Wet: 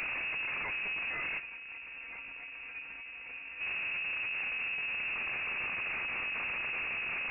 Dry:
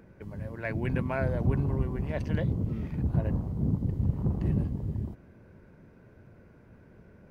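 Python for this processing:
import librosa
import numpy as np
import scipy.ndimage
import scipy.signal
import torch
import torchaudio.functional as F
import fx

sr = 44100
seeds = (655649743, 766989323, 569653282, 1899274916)

y = np.sign(x) * np.sqrt(np.mean(np.square(x)))
y = fx.peak_eq(y, sr, hz=130.0, db=12.5, octaves=0.2)
y = 10.0 ** (-35.0 / 20.0) * np.tanh(y / 10.0 ** (-35.0 / 20.0))
y = fx.comb_fb(y, sr, f0_hz=220.0, decay_s=0.18, harmonics='all', damping=0.0, mix_pct=80, at=(1.38, 3.6), fade=0.02)
y = fx.freq_invert(y, sr, carrier_hz=2700)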